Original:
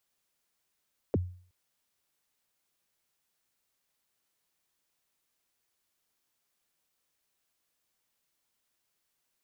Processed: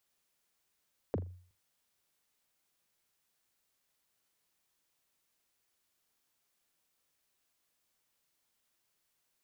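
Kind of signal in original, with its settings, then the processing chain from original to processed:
kick drum length 0.37 s, from 580 Hz, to 90 Hz, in 28 ms, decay 0.47 s, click off, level -21 dB
compression, threshold -33 dBFS; on a send: flutter echo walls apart 7 m, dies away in 0.21 s

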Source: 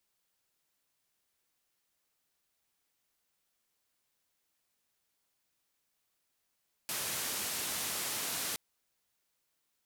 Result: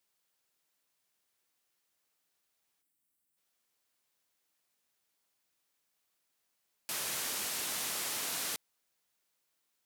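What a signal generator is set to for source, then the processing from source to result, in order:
noise band 91–14000 Hz, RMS -36.5 dBFS 1.67 s
time-frequency box 2.81–3.37 s, 360–7400 Hz -9 dB; bass shelf 120 Hz -8.5 dB

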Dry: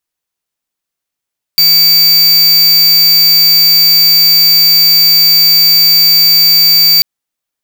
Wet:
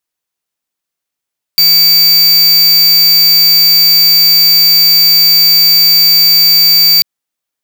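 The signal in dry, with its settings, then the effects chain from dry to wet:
tone square 4.65 kHz -6.5 dBFS 5.44 s
bass shelf 91 Hz -6 dB

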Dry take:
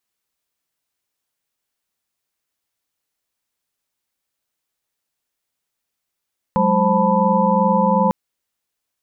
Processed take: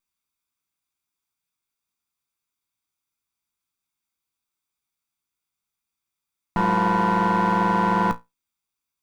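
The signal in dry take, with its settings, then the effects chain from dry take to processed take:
chord F#3/G#3/C5/A5/B5 sine, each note -19.5 dBFS 1.55 s
comb filter that takes the minimum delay 0.84 ms; feedback comb 58 Hz, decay 0.19 s, harmonics all, mix 70%

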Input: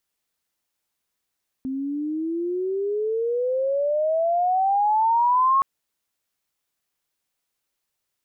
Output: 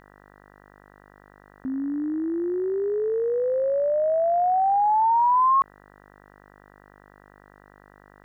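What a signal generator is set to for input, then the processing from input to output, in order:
sweep logarithmic 260 Hz -> 1.1 kHz -25 dBFS -> -15 dBFS 3.97 s
mains buzz 50 Hz, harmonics 39, -53 dBFS -1 dB/octave

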